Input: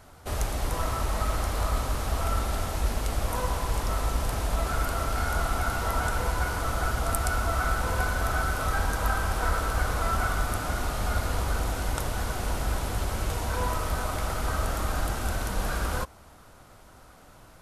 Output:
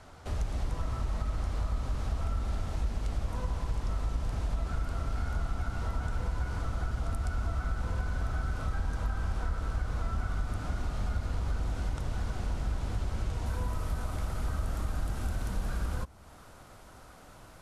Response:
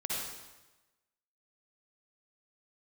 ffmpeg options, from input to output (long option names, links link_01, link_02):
-filter_complex "[0:a]acrossover=split=260[link_01][link_02];[link_02]acompressor=threshold=-48dB:ratio=2[link_03];[link_01][link_03]amix=inputs=2:normalize=0,asetnsamples=nb_out_samples=441:pad=0,asendcmd='13.46 lowpass f 12000',lowpass=7100,acompressor=threshold=-28dB:ratio=2.5"